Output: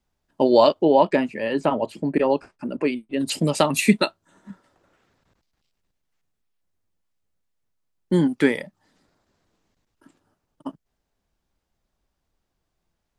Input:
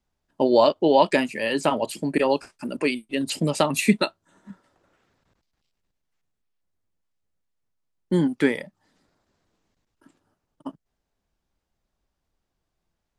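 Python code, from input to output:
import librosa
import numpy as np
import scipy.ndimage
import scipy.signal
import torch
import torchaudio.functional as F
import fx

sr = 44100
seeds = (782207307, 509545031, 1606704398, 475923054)

y = fx.lowpass(x, sr, hz=1200.0, slope=6, at=(0.83, 3.19), fade=0.02)
y = F.gain(torch.from_numpy(y), 2.0).numpy()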